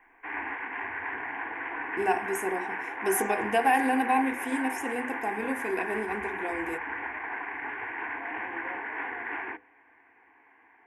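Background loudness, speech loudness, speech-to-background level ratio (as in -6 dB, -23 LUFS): -34.0 LUFS, -29.5 LUFS, 4.5 dB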